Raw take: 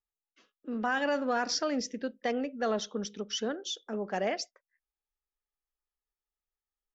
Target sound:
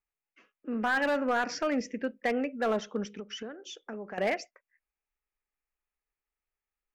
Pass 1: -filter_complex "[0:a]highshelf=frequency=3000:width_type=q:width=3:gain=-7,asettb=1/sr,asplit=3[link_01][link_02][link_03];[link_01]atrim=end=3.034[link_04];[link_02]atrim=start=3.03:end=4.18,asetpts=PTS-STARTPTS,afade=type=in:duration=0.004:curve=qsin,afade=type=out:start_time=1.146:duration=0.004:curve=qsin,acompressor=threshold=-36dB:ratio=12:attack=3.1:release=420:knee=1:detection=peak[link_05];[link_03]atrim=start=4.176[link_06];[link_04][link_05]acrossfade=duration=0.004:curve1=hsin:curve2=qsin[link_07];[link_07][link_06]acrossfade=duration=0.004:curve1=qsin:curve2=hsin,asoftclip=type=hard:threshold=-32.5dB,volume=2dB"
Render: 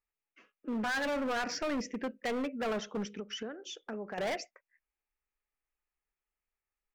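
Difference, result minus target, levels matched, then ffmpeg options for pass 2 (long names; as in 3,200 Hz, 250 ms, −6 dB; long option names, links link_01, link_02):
hard clipping: distortion +10 dB
-filter_complex "[0:a]highshelf=frequency=3000:width_type=q:width=3:gain=-7,asettb=1/sr,asplit=3[link_01][link_02][link_03];[link_01]atrim=end=3.034[link_04];[link_02]atrim=start=3.03:end=4.18,asetpts=PTS-STARTPTS,afade=type=in:duration=0.004:curve=qsin,afade=type=out:start_time=1.146:duration=0.004:curve=qsin,acompressor=threshold=-36dB:ratio=12:attack=3.1:release=420:knee=1:detection=peak[link_05];[link_03]atrim=start=4.176[link_06];[link_04][link_05]acrossfade=duration=0.004:curve1=hsin:curve2=qsin[link_07];[link_07][link_06]acrossfade=duration=0.004:curve1=qsin:curve2=hsin,asoftclip=type=hard:threshold=-23.5dB,volume=2dB"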